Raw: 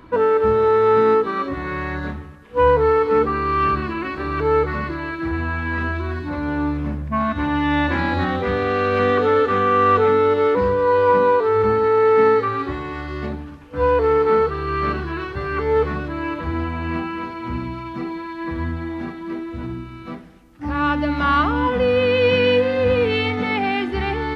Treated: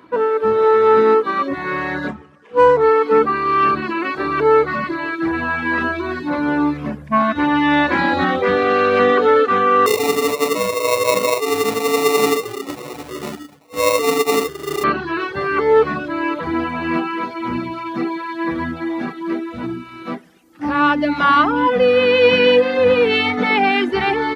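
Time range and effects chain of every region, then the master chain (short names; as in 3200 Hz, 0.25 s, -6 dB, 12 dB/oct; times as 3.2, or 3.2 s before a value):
2.08–2.84 median filter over 9 samples + air absorption 63 m
9.86–14.84 flange 1.4 Hz, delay 3 ms, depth 9.3 ms, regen +64% + sample-rate reducer 1600 Hz
whole clip: HPF 210 Hz 12 dB/oct; reverb removal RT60 0.72 s; AGC gain up to 8 dB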